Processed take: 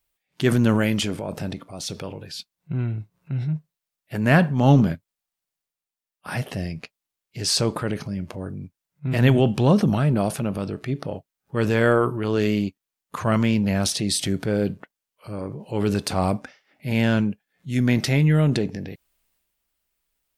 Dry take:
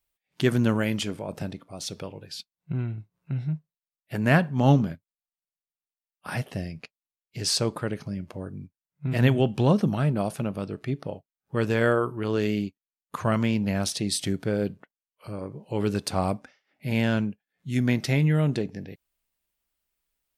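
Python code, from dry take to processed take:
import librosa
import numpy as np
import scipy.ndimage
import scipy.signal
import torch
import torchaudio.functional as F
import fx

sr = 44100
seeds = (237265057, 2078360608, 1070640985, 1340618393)

y = fx.transient(x, sr, attack_db=-3, sustain_db=5)
y = y * 10.0 ** (4.0 / 20.0)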